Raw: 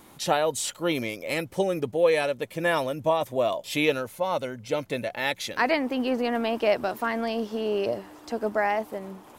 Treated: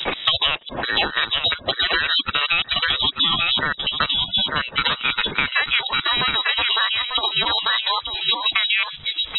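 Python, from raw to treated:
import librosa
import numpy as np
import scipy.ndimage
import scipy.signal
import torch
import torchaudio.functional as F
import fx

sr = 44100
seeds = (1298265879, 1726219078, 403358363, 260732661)

p1 = fx.block_reorder(x, sr, ms=138.0, group=2)
p2 = fx.highpass(p1, sr, hz=330.0, slope=6)
p3 = fx.transient(p2, sr, attack_db=2, sustain_db=-3)
p4 = p3 + fx.echo_single(p3, sr, ms=893, db=-6.5, dry=0)
p5 = fx.spec_gate(p4, sr, threshold_db=-30, keep='strong')
p6 = fx.level_steps(p5, sr, step_db=15)
p7 = p5 + F.gain(torch.from_numpy(p6), 3.0).numpy()
p8 = fx.freq_invert(p7, sr, carrier_hz=3600)
p9 = fx.formant_shift(p8, sr, semitones=5)
y = fx.band_squash(p9, sr, depth_pct=100)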